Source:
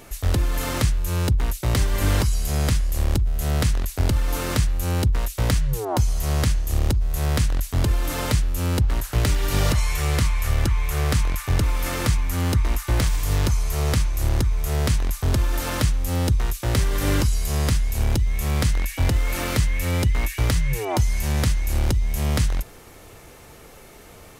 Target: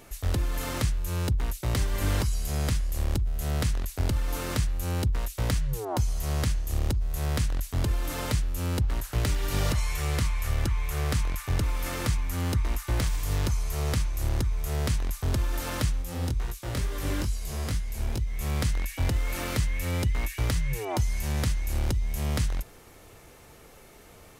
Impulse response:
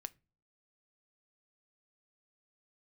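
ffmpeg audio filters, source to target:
-filter_complex "[0:a]asplit=3[a][b][c];[a]afade=t=out:st=16.01:d=0.02[d];[b]flanger=delay=17:depth=7.3:speed=2.3,afade=t=in:st=16.01:d=0.02,afade=t=out:st=18.39:d=0.02[e];[c]afade=t=in:st=18.39:d=0.02[f];[d][e][f]amix=inputs=3:normalize=0,volume=-6dB"

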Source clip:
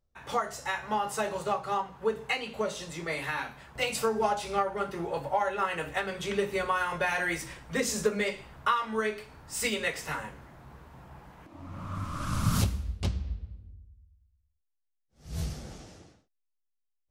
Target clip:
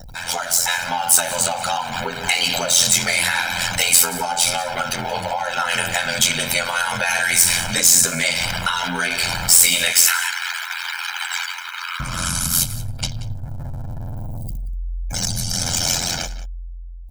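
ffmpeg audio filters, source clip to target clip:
-filter_complex "[0:a]aeval=exprs='val(0)+0.5*0.0211*sgn(val(0))':c=same,asettb=1/sr,asplit=3[a][b][c];[a]atrim=end=9.924[d];[b]atrim=start=9.92:end=12,asetpts=PTS-STARTPTS,afade=t=in:d=0.004:c=qsin,afade=t=out:st=2.076:d=0.004:c=qsin,highpass=f=1.1k:w=0.5412,highpass=f=1.1k:w=1.3066[e];[c]atrim=start=11.996[f];[d][e]acrossfade=d=0.004:c1=hsin:c2=qsin[g];[g][f]acrossfade=d=0.004:c1=qsin:c2=hsin,afftdn=nr=29:nf=-47,highshelf=f=5.6k:g=2.5,aecho=1:1:1.3:0.89,dynaudnorm=f=270:g=9:m=15dB,alimiter=limit=-10dB:level=0:latency=1:release=220,acompressor=threshold=-24dB:ratio=2.5,crystalizer=i=9.5:c=0,aeval=exprs='val(0)*sin(2*PI*43*n/s)':c=same,asoftclip=type=tanh:threshold=-5dB,asplit=2[h][i];[i]adelay=180.8,volume=-15dB,highshelf=f=4k:g=-4.07[j];[h][j]amix=inputs=2:normalize=0"

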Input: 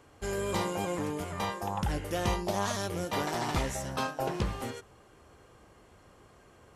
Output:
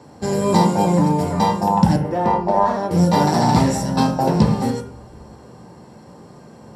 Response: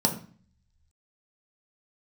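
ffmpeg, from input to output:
-filter_complex "[0:a]asettb=1/sr,asplit=3[a][b][c];[a]atrim=end=1.964[d];[b]atrim=start=1.96:end=2.91,asetpts=PTS-STARTPTS,afade=t=in:d=0.004:c=qsin,afade=t=out:st=0.946:d=0.004:c=qsin,acrossover=split=290 2200:gain=0.2 1 0.0891[e][f][g];[e][f][g]amix=inputs=3:normalize=0[h];[c]atrim=start=2.906[i];[d][h]acrossfade=d=0.004:c1=hsin:c2=qsin[j];[j][i]acrossfade=d=0.004:c1=qsin:c2=hsin[k];[1:a]atrim=start_sample=2205,asetrate=43218,aresample=44100[l];[k][l]afir=irnorm=-1:irlink=0"

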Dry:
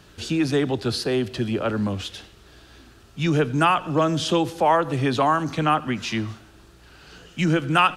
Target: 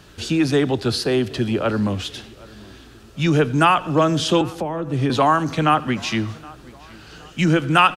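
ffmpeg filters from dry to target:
-filter_complex "[0:a]asettb=1/sr,asplit=3[a][b][c];[a]atrim=end=4.414[d];[b]atrim=start=4.41:end=5.1,asetpts=PTS-STARTPTS,afade=t=in:d=0.004:c=qsin,afade=t=out:st=0.686:d=0.004:c=qsin,acrossover=split=390[e][f];[f]acompressor=threshold=-33dB:ratio=10[g];[e][g]amix=inputs=2:normalize=0[h];[c]atrim=start=5.096[i];[d][h]acrossfade=d=0.004:c1=hsin:c2=qsin[j];[j][i]acrossfade=d=0.004:c1=qsin:c2=hsin,asplit=2[k][l];[l]adelay=769,lowpass=f=4.2k:p=1,volume=-23dB,asplit=2[m][n];[n]adelay=769,lowpass=f=4.2k:p=1,volume=0.42,asplit=2[o][p];[p]adelay=769,lowpass=f=4.2k:p=1,volume=0.42[q];[k][m][o][q]amix=inputs=4:normalize=0,volume=3.5dB"

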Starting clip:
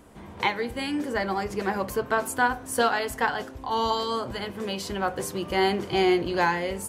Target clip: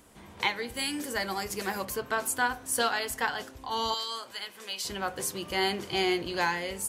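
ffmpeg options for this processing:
-filter_complex "[0:a]asettb=1/sr,asplit=3[a][b][c];[a]atrim=end=0.744[d];[b]atrim=start=0.74:end=1.85,asetpts=PTS-STARTPTS,afade=t=in:d=0.004:c=qsin,afade=t=out:st=1.106:d=0.004:c=qsin,highshelf=f=7.1k:g=12[e];[c]atrim=start=1.846[f];[d][e]acrossfade=d=0.004:c1=hsin:c2=qsin[g];[g][f]acrossfade=d=0.004:c1=qsin:c2=hsin,asettb=1/sr,asplit=3[h][i][j];[h]atrim=end=3.944[k];[i]atrim=start=3.94:end=4.85,asetpts=PTS-STARTPTS,afade=t=in:d=0.004:c=qsin,afade=t=out:st=0.906:d=0.004:c=qsin,highpass=f=1.3k:p=1[l];[j]atrim=start=4.846[m];[k][l]acrossfade=d=0.004:c1=hsin:c2=qsin[n];[n][m]acrossfade=d=0.004:c1=qsin:c2=hsin,highshelf=f=2k:g=11,volume=-7.5dB"

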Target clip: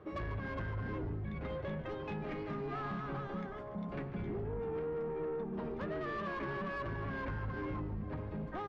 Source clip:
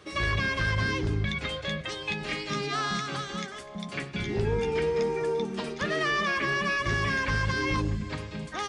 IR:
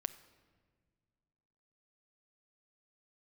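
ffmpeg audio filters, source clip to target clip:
-filter_complex "[0:a]lowpass=1k,acompressor=threshold=-33dB:ratio=6,asoftclip=type=tanh:threshold=-33.5dB,asplit=8[a][b][c][d][e][f][g][h];[b]adelay=144,afreqshift=-150,volume=-13dB[i];[c]adelay=288,afreqshift=-300,volume=-17.4dB[j];[d]adelay=432,afreqshift=-450,volume=-21.9dB[k];[e]adelay=576,afreqshift=-600,volume=-26.3dB[l];[f]adelay=720,afreqshift=-750,volume=-30.7dB[m];[g]adelay=864,afreqshift=-900,volume=-35.2dB[n];[h]adelay=1008,afreqshift=-1050,volume=-39.6dB[o];[a][i][j][k][l][m][n][o]amix=inputs=8:normalize=0"

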